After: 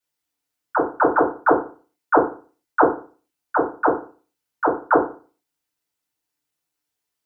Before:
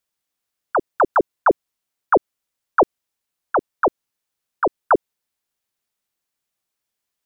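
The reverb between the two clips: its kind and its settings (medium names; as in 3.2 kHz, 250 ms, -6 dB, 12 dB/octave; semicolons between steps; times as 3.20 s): FDN reverb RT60 0.38 s, low-frequency decay 1.1×, high-frequency decay 0.85×, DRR -8.5 dB; trim -9 dB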